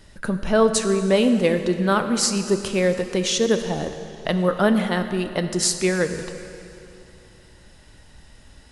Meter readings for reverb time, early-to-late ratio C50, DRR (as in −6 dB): 2.9 s, 9.0 dB, 8.0 dB